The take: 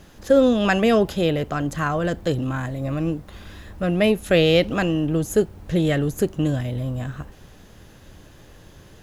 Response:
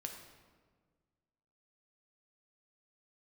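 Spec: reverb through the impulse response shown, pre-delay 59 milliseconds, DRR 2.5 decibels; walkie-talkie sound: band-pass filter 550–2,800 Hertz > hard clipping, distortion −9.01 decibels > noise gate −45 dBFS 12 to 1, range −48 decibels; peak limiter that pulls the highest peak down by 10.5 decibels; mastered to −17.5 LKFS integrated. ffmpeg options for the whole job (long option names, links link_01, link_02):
-filter_complex "[0:a]alimiter=limit=-16dB:level=0:latency=1,asplit=2[link_01][link_02];[1:a]atrim=start_sample=2205,adelay=59[link_03];[link_02][link_03]afir=irnorm=-1:irlink=0,volume=0dB[link_04];[link_01][link_04]amix=inputs=2:normalize=0,highpass=550,lowpass=2800,asoftclip=type=hard:threshold=-28dB,agate=range=-48dB:threshold=-45dB:ratio=12,volume=15.5dB"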